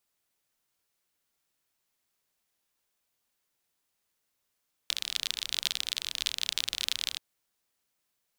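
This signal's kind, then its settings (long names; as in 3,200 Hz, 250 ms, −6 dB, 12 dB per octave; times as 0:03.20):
rain-like ticks over hiss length 2.28 s, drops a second 38, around 3,600 Hz, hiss −24 dB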